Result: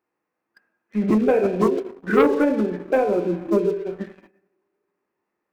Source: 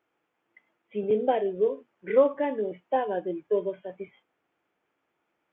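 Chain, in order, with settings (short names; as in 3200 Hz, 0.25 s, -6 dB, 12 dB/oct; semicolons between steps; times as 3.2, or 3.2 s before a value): two-slope reverb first 0.84 s, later 2.7 s, from -24 dB, DRR 4 dB; sample leveller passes 2; formant shift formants -4 st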